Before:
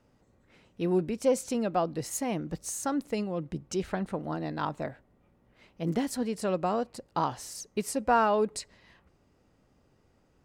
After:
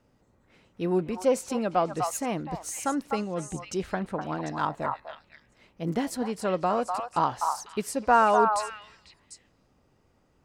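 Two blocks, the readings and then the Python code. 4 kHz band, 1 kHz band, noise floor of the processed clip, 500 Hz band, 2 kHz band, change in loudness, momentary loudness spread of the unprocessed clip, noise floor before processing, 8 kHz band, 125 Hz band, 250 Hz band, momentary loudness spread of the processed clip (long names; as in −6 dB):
+1.5 dB, +6.0 dB, −66 dBFS, +2.0 dB, +5.0 dB, +3.0 dB, 9 LU, −67 dBFS, +0.5 dB, 0.0 dB, +0.5 dB, 11 LU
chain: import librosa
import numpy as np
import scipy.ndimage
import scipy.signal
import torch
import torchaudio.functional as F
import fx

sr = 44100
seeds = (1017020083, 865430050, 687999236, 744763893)

y = fx.dynamic_eq(x, sr, hz=1200.0, q=0.71, threshold_db=-38.0, ratio=4.0, max_db=5)
y = fx.echo_stepped(y, sr, ms=249, hz=1000.0, octaves=1.4, feedback_pct=70, wet_db=-2.0)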